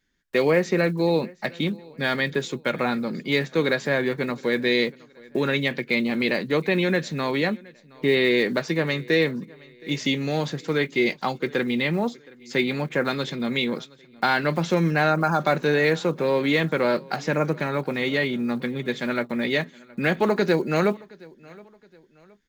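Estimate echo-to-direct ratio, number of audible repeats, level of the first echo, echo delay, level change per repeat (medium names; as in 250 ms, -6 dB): -23.5 dB, 2, -24.0 dB, 719 ms, -8.0 dB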